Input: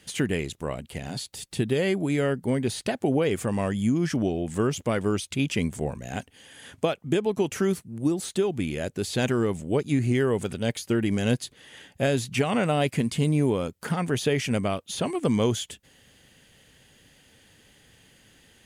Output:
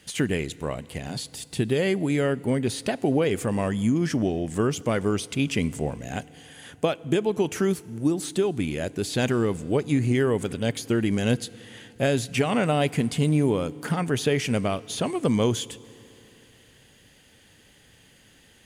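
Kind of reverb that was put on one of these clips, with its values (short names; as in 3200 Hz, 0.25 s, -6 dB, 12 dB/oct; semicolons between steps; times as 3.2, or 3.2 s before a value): FDN reverb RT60 3.2 s, high-frequency decay 0.9×, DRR 19.5 dB; gain +1 dB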